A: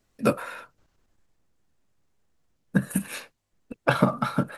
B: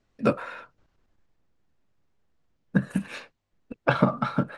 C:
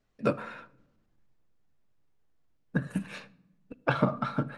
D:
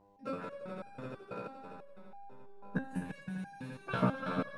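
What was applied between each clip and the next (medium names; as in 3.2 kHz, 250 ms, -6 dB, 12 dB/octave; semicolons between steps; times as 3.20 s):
distance through air 110 m
flange 0.6 Hz, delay 1.4 ms, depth 1.7 ms, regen -82%; simulated room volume 2900 m³, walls furnished, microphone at 0.45 m
mains buzz 100 Hz, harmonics 10, -59 dBFS -1 dB/octave; echo with a slow build-up 85 ms, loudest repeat 5, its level -7.5 dB; resonator arpeggio 6.1 Hz 62–800 Hz; trim +2.5 dB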